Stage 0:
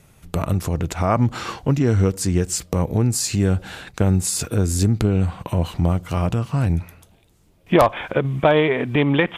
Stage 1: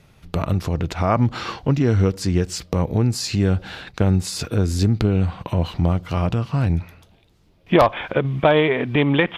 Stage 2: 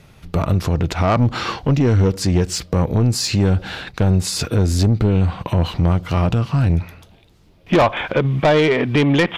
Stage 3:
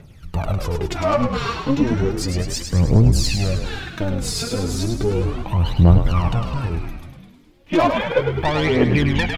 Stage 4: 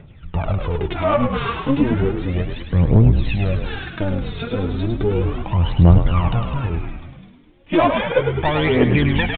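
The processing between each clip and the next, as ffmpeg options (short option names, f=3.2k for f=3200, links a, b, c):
-af "highshelf=f=6.1k:t=q:w=1.5:g=-8"
-af "asoftclip=type=tanh:threshold=-14.5dB,volume=5.5dB"
-filter_complex "[0:a]aphaser=in_gain=1:out_gain=1:delay=4.4:decay=0.73:speed=0.34:type=triangular,asplit=2[a][b];[b]asplit=8[c][d][e][f][g][h][i][j];[c]adelay=104,afreqshift=-55,volume=-6dB[k];[d]adelay=208,afreqshift=-110,volume=-10.6dB[l];[e]adelay=312,afreqshift=-165,volume=-15.2dB[m];[f]adelay=416,afreqshift=-220,volume=-19.7dB[n];[g]adelay=520,afreqshift=-275,volume=-24.3dB[o];[h]adelay=624,afreqshift=-330,volume=-28.9dB[p];[i]adelay=728,afreqshift=-385,volume=-33.5dB[q];[j]adelay=832,afreqshift=-440,volume=-38.1dB[r];[k][l][m][n][o][p][q][r]amix=inputs=8:normalize=0[s];[a][s]amix=inputs=2:normalize=0,volume=-6.5dB"
-af "aresample=8000,aresample=44100,volume=1dB"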